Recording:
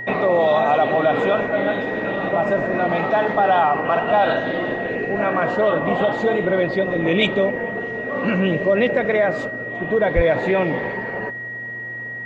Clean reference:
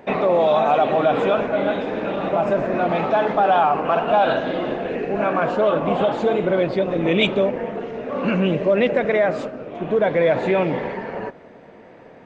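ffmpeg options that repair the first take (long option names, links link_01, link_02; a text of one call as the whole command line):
ffmpeg -i in.wav -filter_complex "[0:a]bandreject=frequency=119.1:width_type=h:width=4,bandreject=frequency=238.2:width_type=h:width=4,bandreject=frequency=357.3:width_type=h:width=4,bandreject=frequency=1900:width=30,asplit=3[link_01][link_02][link_03];[link_01]afade=type=out:start_time=10.15:duration=0.02[link_04];[link_02]highpass=frequency=140:width=0.5412,highpass=frequency=140:width=1.3066,afade=type=in:start_time=10.15:duration=0.02,afade=type=out:start_time=10.27:duration=0.02[link_05];[link_03]afade=type=in:start_time=10.27:duration=0.02[link_06];[link_04][link_05][link_06]amix=inputs=3:normalize=0" out.wav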